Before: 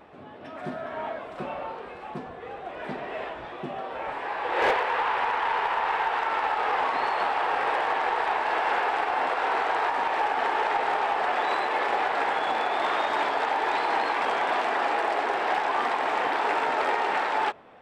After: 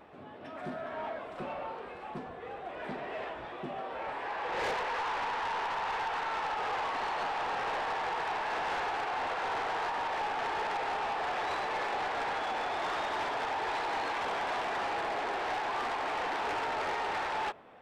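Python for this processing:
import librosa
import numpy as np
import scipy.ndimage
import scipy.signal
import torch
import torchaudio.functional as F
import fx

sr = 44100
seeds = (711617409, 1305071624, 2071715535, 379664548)

y = 10.0 ** (-26.0 / 20.0) * np.tanh(x / 10.0 ** (-26.0 / 20.0))
y = y * 10.0 ** (-3.5 / 20.0)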